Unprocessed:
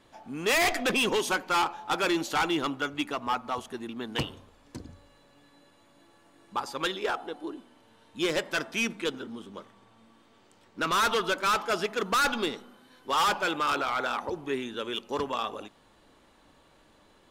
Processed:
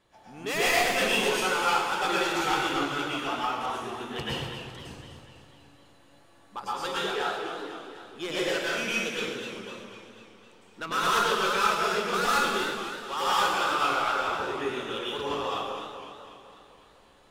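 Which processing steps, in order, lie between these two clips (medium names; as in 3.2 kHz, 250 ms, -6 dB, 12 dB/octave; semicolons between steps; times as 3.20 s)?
peaking EQ 270 Hz -9.5 dB 0.24 oct; plate-style reverb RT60 1 s, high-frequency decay 0.95×, pre-delay 95 ms, DRR -7.5 dB; modulated delay 250 ms, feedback 57%, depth 125 cents, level -9 dB; trim -7 dB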